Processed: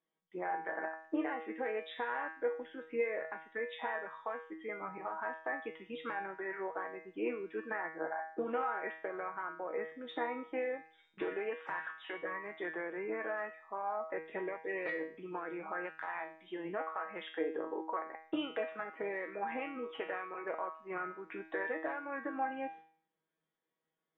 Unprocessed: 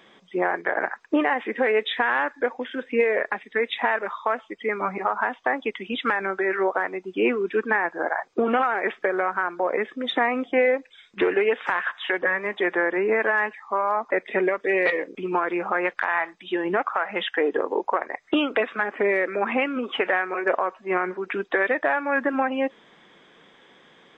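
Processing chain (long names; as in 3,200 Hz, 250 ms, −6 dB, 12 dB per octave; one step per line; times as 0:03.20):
noise gate with hold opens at −42 dBFS
high-shelf EQ 2,200 Hz −10.5 dB
tuned comb filter 160 Hz, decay 0.49 s, harmonics all, mix 90%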